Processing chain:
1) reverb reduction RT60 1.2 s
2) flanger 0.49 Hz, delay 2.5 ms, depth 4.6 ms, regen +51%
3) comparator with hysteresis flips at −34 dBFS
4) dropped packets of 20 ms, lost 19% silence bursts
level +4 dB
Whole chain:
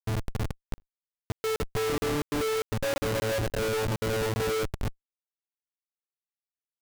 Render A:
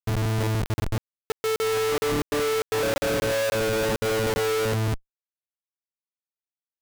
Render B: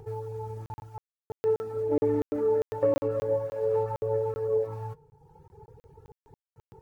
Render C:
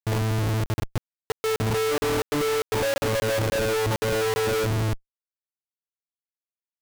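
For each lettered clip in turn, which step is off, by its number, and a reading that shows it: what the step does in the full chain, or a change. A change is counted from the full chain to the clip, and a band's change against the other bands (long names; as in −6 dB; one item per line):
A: 1, change in momentary loudness spread −4 LU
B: 3, change in crest factor +7.0 dB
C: 2, 125 Hz band +1.5 dB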